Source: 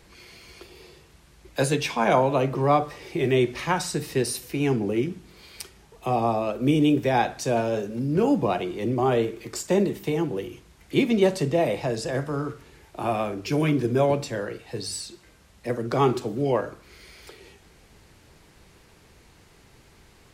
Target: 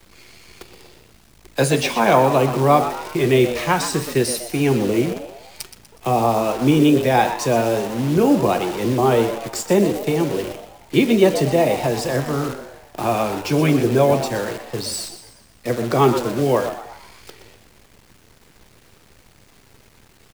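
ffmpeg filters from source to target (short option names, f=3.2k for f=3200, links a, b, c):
-filter_complex "[0:a]acrusher=bits=7:dc=4:mix=0:aa=0.000001,asplit=6[a][b][c][d][e][f];[b]adelay=122,afreqshift=110,volume=-11dB[g];[c]adelay=244,afreqshift=220,volume=-17.9dB[h];[d]adelay=366,afreqshift=330,volume=-24.9dB[i];[e]adelay=488,afreqshift=440,volume=-31.8dB[j];[f]adelay=610,afreqshift=550,volume=-38.7dB[k];[a][g][h][i][j][k]amix=inputs=6:normalize=0,volume=5.5dB"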